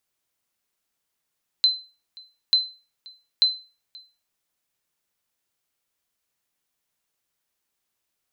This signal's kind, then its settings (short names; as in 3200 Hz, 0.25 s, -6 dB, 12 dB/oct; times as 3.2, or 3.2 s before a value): sonar ping 4060 Hz, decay 0.33 s, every 0.89 s, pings 3, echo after 0.53 s, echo -25.5 dB -10.5 dBFS